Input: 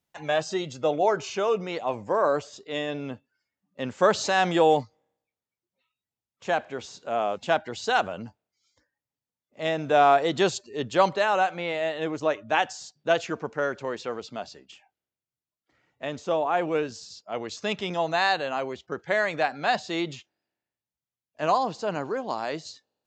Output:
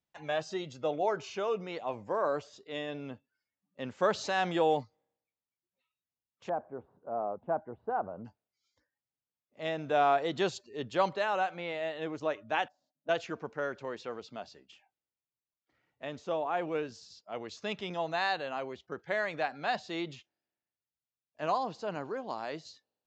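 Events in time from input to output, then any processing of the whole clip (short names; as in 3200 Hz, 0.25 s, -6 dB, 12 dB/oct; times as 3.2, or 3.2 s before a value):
6.49–8.25 LPF 1100 Hz 24 dB/oct
12.68–13.09 double band-pass 410 Hz, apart 1.1 oct
whole clip: LPF 6000 Hz 12 dB/oct; gain -7.5 dB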